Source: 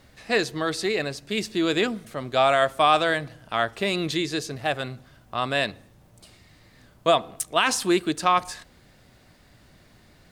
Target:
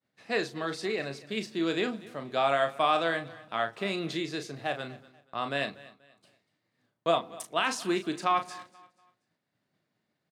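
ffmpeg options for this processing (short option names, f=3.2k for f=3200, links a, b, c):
-filter_complex "[0:a]highpass=f=130:w=0.5412,highpass=f=130:w=1.3066,agate=range=-33dB:threshold=-45dB:ratio=3:detection=peak,highshelf=f=6.4k:g=-9,asplit=2[a][b];[b]adelay=36,volume=-8.5dB[c];[a][c]amix=inputs=2:normalize=0,aecho=1:1:241|482|723:0.1|0.032|0.0102,volume=-6.5dB"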